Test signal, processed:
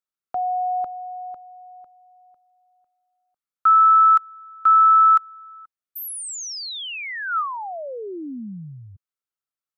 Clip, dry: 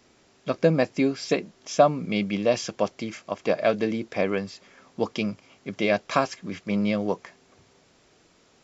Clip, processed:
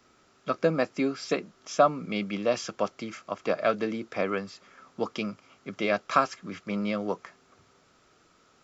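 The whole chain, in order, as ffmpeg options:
-filter_complex "[0:a]equalizer=f=1.3k:t=o:w=0.34:g=11.5,acrossover=split=160[a][b];[a]acompressor=threshold=-44dB:ratio=6[c];[c][b]amix=inputs=2:normalize=0,volume=-4dB"

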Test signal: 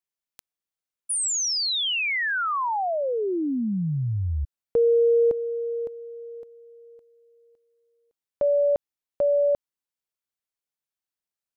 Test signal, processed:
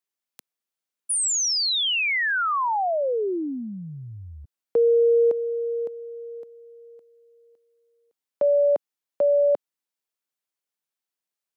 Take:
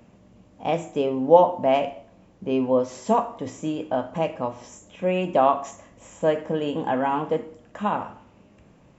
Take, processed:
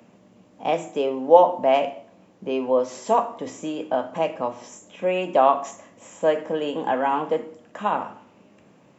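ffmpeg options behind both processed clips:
-filter_complex "[0:a]highpass=180,acrossover=split=330[a][b];[a]acompressor=threshold=-40dB:ratio=6:attack=26:release=44:knee=6[c];[c][b]amix=inputs=2:normalize=0,volume=2dB"

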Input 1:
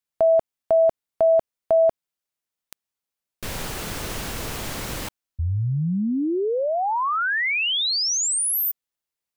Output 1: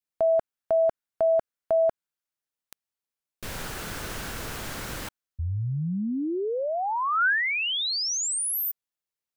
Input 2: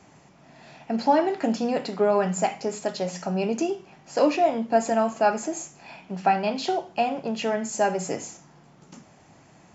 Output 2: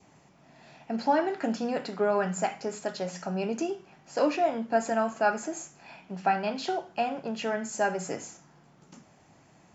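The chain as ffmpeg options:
-af "adynamicequalizer=threshold=0.00562:dfrequency=1500:dqfactor=2.8:tfrequency=1500:tqfactor=2.8:attack=5:release=100:ratio=0.375:range=3.5:mode=boostabove:tftype=bell,volume=-5dB"

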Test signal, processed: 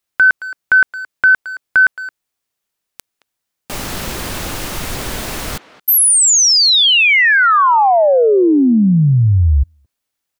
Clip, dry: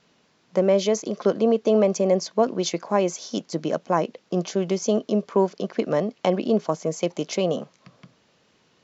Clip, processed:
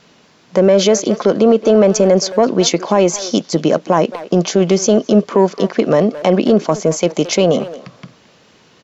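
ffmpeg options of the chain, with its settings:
-filter_complex "[0:a]acontrast=64,asplit=2[a][b];[b]adelay=220,highpass=300,lowpass=3.4k,asoftclip=type=hard:threshold=-13.5dB,volume=-16dB[c];[a][c]amix=inputs=2:normalize=0,alimiter=level_in=8.5dB:limit=-1dB:release=50:level=0:latency=1,volume=-2dB"

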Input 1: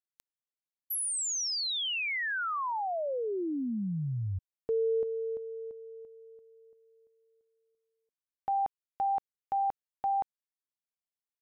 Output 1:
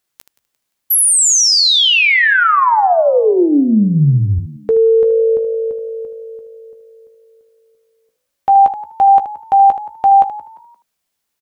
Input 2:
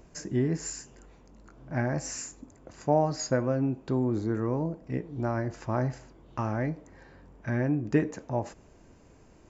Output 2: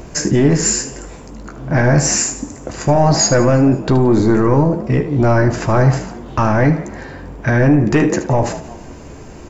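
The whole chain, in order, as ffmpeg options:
-filter_complex "[0:a]asplit=2[a][b];[b]asplit=3[c][d][e];[c]adelay=174,afreqshift=52,volume=-21dB[f];[d]adelay=348,afreqshift=104,volume=-29.4dB[g];[e]adelay=522,afreqshift=156,volume=-37.8dB[h];[f][g][h]amix=inputs=3:normalize=0[i];[a][i]amix=inputs=2:normalize=0,apsyclip=28.5dB,asplit=2[j][k];[k]aecho=0:1:14|76:0.299|0.266[l];[j][l]amix=inputs=2:normalize=0,volume=-8dB"

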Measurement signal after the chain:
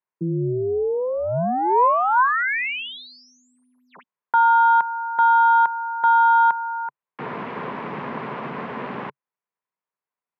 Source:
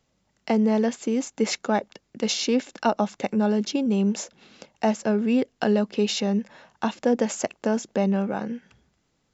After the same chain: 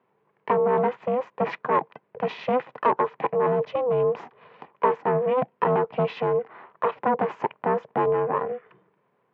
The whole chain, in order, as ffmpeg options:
-af "aeval=exprs='0.398*(cos(1*acos(clip(val(0)/0.398,-1,1)))-cos(1*PI/2))+0.141*(cos(5*acos(clip(val(0)/0.398,-1,1)))-cos(5*PI/2))+0.00282*(cos(8*acos(clip(val(0)/0.398,-1,1)))-cos(8*PI/2))':c=same,aeval=exprs='val(0)*sin(2*PI*250*n/s)':c=same,highpass=f=140:w=0.5412,highpass=f=140:w=1.3066,equalizer=f=140:t=q:w=4:g=3,equalizer=f=290:t=q:w=4:g=-8,equalizer=f=430:t=q:w=4:g=4,equalizer=f=1k:t=q:w=4:g=10,lowpass=f=2.3k:w=0.5412,lowpass=f=2.3k:w=1.3066,volume=-4dB"

